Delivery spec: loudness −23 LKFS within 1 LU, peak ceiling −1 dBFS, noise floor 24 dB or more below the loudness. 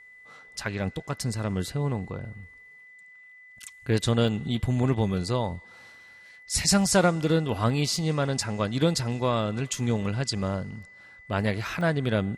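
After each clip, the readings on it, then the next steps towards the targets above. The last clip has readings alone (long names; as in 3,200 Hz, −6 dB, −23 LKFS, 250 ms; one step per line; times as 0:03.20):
number of dropouts 3; longest dropout 1.1 ms; interfering tone 2,000 Hz; level of the tone −48 dBFS; integrated loudness −26.5 LKFS; sample peak −8.5 dBFS; target loudness −23.0 LKFS
→ repair the gap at 0:04.28/0:07.96/0:11.81, 1.1 ms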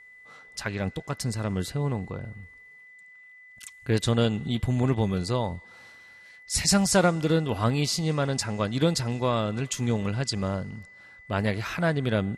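number of dropouts 0; interfering tone 2,000 Hz; level of the tone −48 dBFS
→ notch filter 2,000 Hz, Q 30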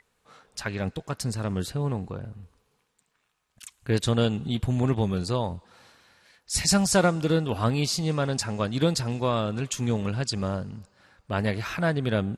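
interfering tone none found; integrated loudness −26.5 LKFS; sample peak −9.0 dBFS; target loudness −23.0 LKFS
→ level +3.5 dB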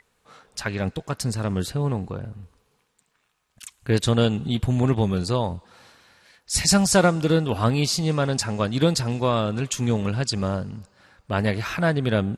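integrated loudness −23.0 LKFS; sample peak −5.5 dBFS; background noise floor −70 dBFS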